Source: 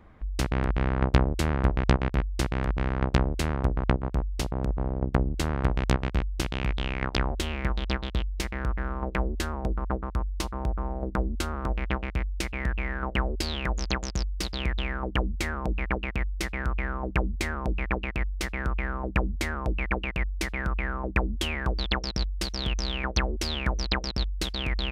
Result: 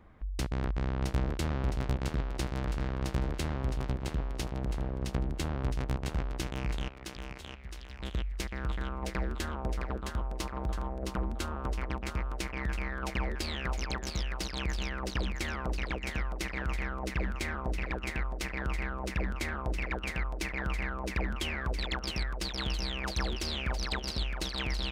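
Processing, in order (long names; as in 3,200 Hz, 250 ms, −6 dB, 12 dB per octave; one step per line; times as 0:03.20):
0:06.88–0:08.00: guitar amp tone stack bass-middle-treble 6-0-2
soft clipping −18.5 dBFS, distortion −13 dB
feedback echo with a high-pass in the loop 664 ms, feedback 49%, high-pass 360 Hz, level −4 dB
level −4 dB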